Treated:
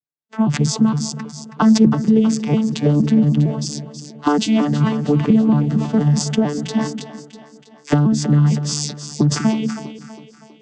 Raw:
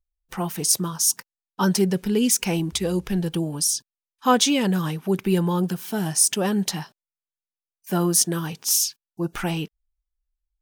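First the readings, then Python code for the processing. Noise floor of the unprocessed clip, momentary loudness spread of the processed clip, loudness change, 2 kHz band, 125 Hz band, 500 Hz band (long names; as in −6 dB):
below −85 dBFS, 14 LU, +5.0 dB, +1.0 dB, +10.5 dB, +3.0 dB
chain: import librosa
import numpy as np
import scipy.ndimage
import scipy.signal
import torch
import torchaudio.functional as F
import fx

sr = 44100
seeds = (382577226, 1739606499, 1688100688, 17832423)

p1 = fx.vocoder_arp(x, sr, chord='bare fifth', root=50, every_ms=230)
p2 = fx.recorder_agc(p1, sr, target_db=-12.5, rise_db_per_s=16.0, max_gain_db=30)
p3 = p2 + fx.echo_split(p2, sr, split_hz=320.0, low_ms=194, high_ms=323, feedback_pct=52, wet_db=-10.0, dry=0)
p4 = fx.sustainer(p3, sr, db_per_s=97.0)
y = p4 * librosa.db_to_amplitude(4.5)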